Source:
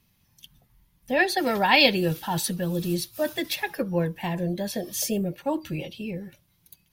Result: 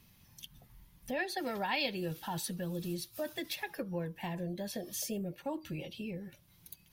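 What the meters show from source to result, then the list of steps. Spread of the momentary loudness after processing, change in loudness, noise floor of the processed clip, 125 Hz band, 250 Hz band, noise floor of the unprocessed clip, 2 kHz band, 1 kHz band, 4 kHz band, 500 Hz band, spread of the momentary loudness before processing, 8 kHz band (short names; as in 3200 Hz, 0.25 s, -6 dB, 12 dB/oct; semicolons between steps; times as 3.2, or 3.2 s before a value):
18 LU, -12.5 dB, -64 dBFS, -11.0 dB, -11.0 dB, -67 dBFS, -14.0 dB, -13.0 dB, -13.5 dB, -12.0 dB, 15 LU, -10.0 dB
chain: compressor 2:1, threshold -51 dBFS, peak gain reduction 20 dB; gain +3.5 dB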